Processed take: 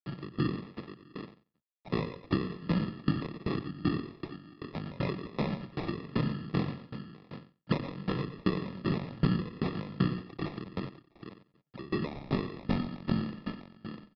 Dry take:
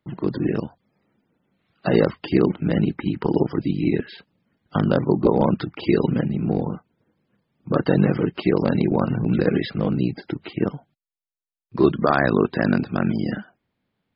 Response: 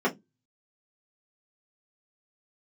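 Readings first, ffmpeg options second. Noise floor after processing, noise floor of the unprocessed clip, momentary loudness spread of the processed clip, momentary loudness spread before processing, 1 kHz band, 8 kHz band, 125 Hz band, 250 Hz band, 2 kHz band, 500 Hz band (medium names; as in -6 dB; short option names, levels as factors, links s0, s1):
-74 dBFS, under -85 dBFS, 14 LU, 10 LU, -12.5 dB, no reading, -9.5 dB, -11.5 dB, -12.5 dB, -16.5 dB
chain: -filter_complex "[0:a]acrusher=bits=6:mix=0:aa=0.000001,asplit=2[s0][s1];[s1]adelay=92,lowpass=f=3300:p=1,volume=0.447,asplit=2[s2][s3];[s3]adelay=92,lowpass=f=3300:p=1,volume=0.24,asplit=2[s4][s5];[s5]adelay=92,lowpass=f=3300:p=1,volume=0.24[s6];[s2][s4][s6]amix=inputs=3:normalize=0[s7];[s0][s7]amix=inputs=2:normalize=0,alimiter=limit=0.282:level=0:latency=1:release=192,acrusher=samples=29:mix=1:aa=0.000001,asplit=2[s8][s9];[s9]aecho=0:1:114|651:0.447|0.188[s10];[s8][s10]amix=inputs=2:normalize=0,aresample=11025,aresample=44100,acrossover=split=200[s11][s12];[s12]acompressor=threshold=0.0447:ratio=6[s13];[s11][s13]amix=inputs=2:normalize=0,aeval=exprs='val(0)*pow(10,-23*if(lt(mod(2.6*n/s,1),2*abs(2.6)/1000),1-mod(2.6*n/s,1)/(2*abs(2.6)/1000),(mod(2.6*n/s,1)-2*abs(2.6)/1000)/(1-2*abs(2.6)/1000))/20)':c=same"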